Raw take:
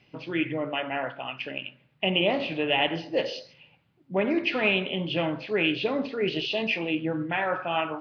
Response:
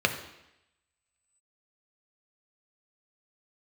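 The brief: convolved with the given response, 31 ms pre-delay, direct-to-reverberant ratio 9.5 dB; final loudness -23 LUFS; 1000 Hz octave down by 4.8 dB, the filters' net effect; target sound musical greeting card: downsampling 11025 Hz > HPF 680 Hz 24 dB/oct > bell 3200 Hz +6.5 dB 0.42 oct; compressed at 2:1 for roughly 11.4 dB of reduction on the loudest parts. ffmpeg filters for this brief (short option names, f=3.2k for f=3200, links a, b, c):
-filter_complex "[0:a]equalizer=f=1k:t=o:g=-5.5,acompressor=threshold=-42dB:ratio=2,asplit=2[a][b];[1:a]atrim=start_sample=2205,adelay=31[c];[b][c]afir=irnorm=-1:irlink=0,volume=-23dB[d];[a][d]amix=inputs=2:normalize=0,aresample=11025,aresample=44100,highpass=f=680:w=0.5412,highpass=f=680:w=1.3066,equalizer=f=3.2k:t=o:w=0.42:g=6.5,volume=14.5dB"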